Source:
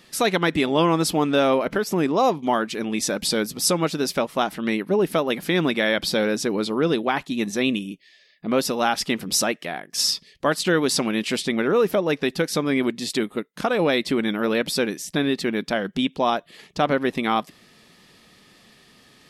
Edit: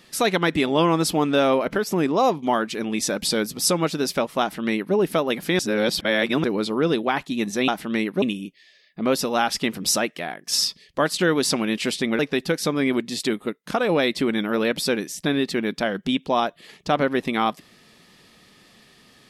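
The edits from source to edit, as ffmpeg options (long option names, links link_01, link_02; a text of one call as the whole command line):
ffmpeg -i in.wav -filter_complex "[0:a]asplit=6[link_01][link_02][link_03][link_04][link_05][link_06];[link_01]atrim=end=5.592[link_07];[link_02]atrim=start=5.588:end=6.442,asetpts=PTS-STARTPTS,areverse[link_08];[link_03]atrim=start=6.438:end=7.682[link_09];[link_04]atrim=start=4.408:end=4.952[link_10];[link_05]atrim=start=7.678:end=11.652[link_11];[link_06]atrim=start=12.088[link_12];[link_07][link_08]acrossfade=duration=0.004:curve1=hsin:curve2=hsin[link_13];[link_13][link_09]acrossfade=duration=0.004:curve1=hsin:curve2=hsin[link_14];[link_14][link_10]acrossfade=duration=0.004:curve1=hsin:curve2=hsin[link_15];[link_15][link_11]acrossfade=duration=0.004:curve1=hsin:curve2=hsin[link_16];[link_16][link_12]acrossfade=duration=0.004:curve1=hsin:curve2=hsin" out.wav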